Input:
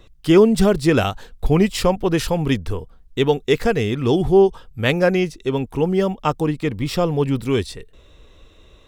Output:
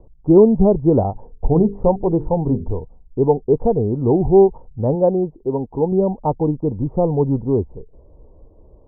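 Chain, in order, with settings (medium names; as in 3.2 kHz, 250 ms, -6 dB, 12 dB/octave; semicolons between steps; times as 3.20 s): Chebyshev low-pass 920 Hz, order 5; 1.11–2.71 s: hum notches 50/100/150/200/250/300/350/400/450 Hz; 4.95–5.92 s: bass shelf 150 Hz -8 dB; trim +2.5 dB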